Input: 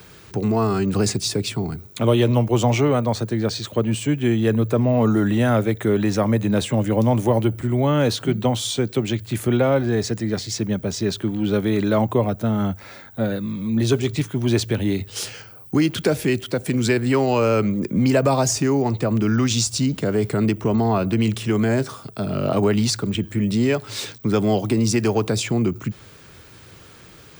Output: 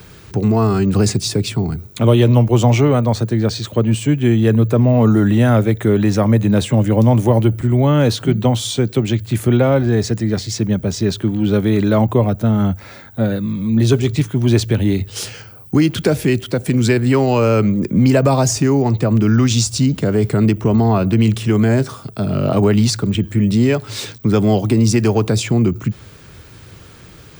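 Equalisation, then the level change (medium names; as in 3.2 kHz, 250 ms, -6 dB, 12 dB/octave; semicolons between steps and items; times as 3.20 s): bass shelf 180 Hz +7.5 dB; +2.5 dB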